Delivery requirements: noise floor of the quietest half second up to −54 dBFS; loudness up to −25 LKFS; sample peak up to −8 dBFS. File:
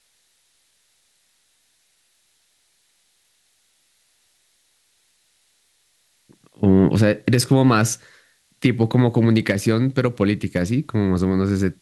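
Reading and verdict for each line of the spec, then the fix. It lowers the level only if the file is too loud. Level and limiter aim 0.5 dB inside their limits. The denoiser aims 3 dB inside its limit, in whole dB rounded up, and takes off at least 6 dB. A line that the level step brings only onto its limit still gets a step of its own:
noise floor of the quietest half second −64 dBFS: in spec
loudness −19.0 LKFS: out of spec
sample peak −4.5 dBFS: out of spec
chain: level −6.5 dB

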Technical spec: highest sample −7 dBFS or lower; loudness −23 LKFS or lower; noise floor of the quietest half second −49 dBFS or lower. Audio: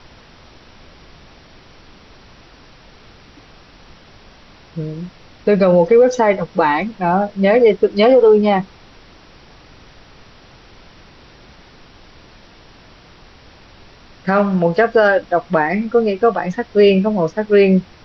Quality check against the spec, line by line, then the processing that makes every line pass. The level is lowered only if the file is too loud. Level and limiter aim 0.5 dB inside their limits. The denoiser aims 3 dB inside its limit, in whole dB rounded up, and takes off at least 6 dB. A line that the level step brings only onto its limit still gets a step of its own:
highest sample −3.0 dBFS: out of spec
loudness −14.5 LKFS: out of spec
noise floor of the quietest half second −44 dBFS: out of spec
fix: level −9 dB

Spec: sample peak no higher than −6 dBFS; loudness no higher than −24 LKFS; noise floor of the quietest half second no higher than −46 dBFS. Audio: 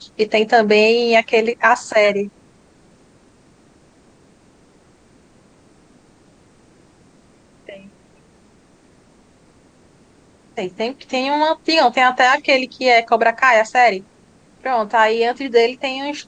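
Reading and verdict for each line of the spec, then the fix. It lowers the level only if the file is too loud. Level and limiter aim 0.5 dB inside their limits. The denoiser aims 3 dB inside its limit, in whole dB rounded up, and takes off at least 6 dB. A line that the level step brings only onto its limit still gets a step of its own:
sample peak −2.5 dBFS: out of spec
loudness −15.5 LKFS: out of spec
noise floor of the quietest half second −52 dBFS: in spec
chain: level −9 dB

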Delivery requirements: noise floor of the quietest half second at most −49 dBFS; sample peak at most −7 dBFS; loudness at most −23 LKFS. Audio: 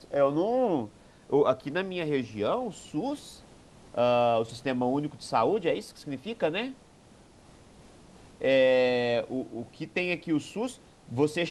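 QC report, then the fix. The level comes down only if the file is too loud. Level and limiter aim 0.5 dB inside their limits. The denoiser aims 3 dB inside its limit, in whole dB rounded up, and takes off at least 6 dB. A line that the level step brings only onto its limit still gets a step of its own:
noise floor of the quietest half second −55 dBFS: in spec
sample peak −11.5 dBFS: in spec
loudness −28.5 LKFS: in spec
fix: no processing needed

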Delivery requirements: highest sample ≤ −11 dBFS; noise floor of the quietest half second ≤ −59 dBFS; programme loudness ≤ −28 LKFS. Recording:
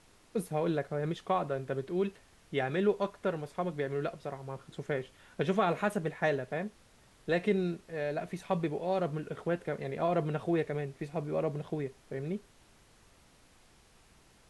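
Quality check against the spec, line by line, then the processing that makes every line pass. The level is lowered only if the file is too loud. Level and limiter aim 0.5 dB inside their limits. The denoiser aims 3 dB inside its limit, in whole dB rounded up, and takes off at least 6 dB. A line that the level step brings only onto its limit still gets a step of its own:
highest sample −16.5 dBFS: in spec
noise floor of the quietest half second −62 dBFS: in spec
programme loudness −34.0 LKFS: in spec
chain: no processing needed

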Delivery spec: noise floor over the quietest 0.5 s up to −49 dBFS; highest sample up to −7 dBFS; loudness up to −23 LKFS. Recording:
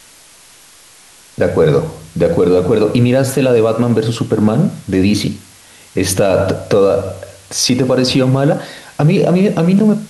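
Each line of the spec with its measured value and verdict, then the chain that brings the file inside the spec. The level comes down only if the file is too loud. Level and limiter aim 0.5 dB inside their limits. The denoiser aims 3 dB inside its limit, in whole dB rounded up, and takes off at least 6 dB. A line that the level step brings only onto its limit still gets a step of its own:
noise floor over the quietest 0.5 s −43 dBFS: out of spec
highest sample −2.5 dBFS: out of spec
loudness −13.5 LKFS: out of spec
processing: level −10 dB

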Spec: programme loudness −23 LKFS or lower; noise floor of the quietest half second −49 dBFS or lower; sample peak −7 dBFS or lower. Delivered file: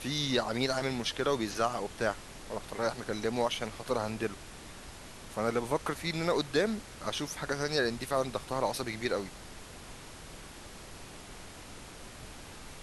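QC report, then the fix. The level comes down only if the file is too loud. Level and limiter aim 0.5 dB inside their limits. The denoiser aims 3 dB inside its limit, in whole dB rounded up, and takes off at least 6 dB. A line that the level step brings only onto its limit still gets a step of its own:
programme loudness −33.0 LKFS: in spec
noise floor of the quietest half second −47 dBFS: out of spec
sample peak −14.5 dBFS: in spec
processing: broadband denoise 6 dB, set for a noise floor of −47 dBFS

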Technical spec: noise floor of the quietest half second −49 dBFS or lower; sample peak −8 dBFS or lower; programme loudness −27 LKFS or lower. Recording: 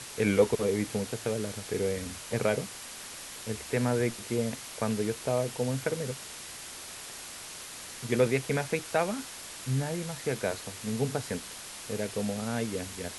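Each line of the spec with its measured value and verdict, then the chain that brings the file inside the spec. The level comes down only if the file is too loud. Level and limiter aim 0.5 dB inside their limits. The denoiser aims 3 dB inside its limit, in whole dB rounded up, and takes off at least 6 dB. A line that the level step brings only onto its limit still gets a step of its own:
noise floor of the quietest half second −43 dBFS: out of spec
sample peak −11.5 dBFS: in spec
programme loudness −32.0 LKFS: in spec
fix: broadband denoise 9 dB, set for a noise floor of −43 dBFS

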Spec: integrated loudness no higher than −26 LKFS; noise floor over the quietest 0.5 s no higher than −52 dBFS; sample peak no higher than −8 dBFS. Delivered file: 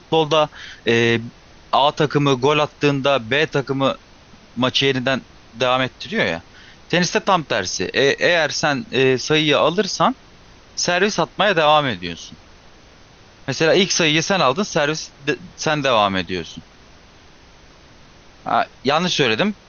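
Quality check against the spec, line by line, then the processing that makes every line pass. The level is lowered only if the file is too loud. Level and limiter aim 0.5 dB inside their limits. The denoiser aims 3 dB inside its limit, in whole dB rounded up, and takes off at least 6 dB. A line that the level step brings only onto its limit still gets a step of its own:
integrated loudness −18.5 LKFS: out of spec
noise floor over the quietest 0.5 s −47 dBFS: out of spec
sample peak −4.0 dBFS: out of spec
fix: level −8 dB

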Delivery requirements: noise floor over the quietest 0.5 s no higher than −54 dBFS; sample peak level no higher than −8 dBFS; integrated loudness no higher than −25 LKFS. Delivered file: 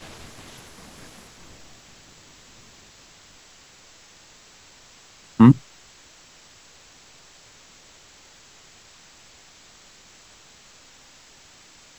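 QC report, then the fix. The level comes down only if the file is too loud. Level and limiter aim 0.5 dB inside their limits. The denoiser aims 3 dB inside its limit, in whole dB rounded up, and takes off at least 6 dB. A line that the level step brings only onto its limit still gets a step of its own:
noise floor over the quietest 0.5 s −51 dBFS: out of spec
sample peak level −2.0 dBFS: out of spec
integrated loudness −17.0 LKFS: out of spec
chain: level −8.5 dB

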